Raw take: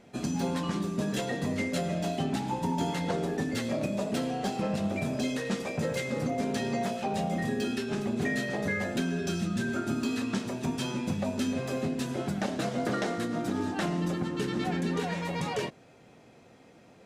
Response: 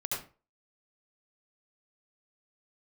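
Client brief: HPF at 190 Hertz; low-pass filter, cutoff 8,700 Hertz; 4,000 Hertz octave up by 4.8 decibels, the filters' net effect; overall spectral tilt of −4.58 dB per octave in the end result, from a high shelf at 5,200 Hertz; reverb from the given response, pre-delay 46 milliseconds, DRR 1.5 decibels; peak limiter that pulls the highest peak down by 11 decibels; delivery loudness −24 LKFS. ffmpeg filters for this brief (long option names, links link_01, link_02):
-filter_complex "[0:a]highpass=190,lowpass=8700,equalizer=frequency=4000:width_type=o:gain=3.5,highshelf=frequency=5200:gain=6.5,alimiter=level_in=2.5dB:limit=-24dB:level=0:latency=1,volume=-2.5dB,asplit=2[link_01][link_02];[1:a]atrim=start_sample=2205,adelay=46[link_03];[link_02][link_03]afir=irnorm=-1:irlink=0,volume=-5.5dB[link_04];[link_01][link_04]amix=inputs=2:normalize=0,volume=8.5dB"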